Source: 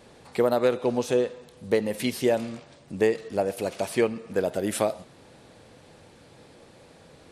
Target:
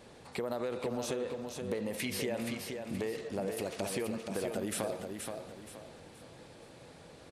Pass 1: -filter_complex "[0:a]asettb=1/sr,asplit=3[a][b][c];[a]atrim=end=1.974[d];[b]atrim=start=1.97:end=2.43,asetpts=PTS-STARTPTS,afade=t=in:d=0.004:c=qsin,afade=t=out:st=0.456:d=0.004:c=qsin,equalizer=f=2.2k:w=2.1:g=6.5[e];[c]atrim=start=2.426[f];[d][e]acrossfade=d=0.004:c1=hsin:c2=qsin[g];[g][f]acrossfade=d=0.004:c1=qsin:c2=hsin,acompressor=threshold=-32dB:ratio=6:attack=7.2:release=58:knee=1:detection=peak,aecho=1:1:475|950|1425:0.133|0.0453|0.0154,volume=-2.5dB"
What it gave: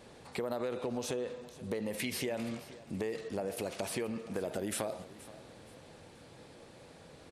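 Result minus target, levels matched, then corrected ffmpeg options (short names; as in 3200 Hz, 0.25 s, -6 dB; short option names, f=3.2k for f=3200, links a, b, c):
echo-to-direct -12 dB
-filter_complex "[0:a]asettb=1/sr,asplit=3[a][b][c];[a]atrim=end=1.974[d];[b]atrim=start=1.97:end=2.43,asetpts=PTS-STARTPTS,afade=t=in:d=0.004:c=qsin,afade=t=out:st=0.456:d=0.004:c=qsin,equalizer=f=2.2k:w=2.1:g=6.5[e];[c]atrim=start=2.426[f];[d][e]acrossfade=d=0.004:c1=hsin:c2=qsin[g];[g][f]acrossfade=d=0.004:c1=qsin:c2=hsin,acompressor=threshold=-32dB:ratio=6:attack=7.2:release=58:knee=1:detection=peak,aecho=1:1:475|950|1425|1900:0.531|0.181|0.0614|0.0209,volume=-2.5dB"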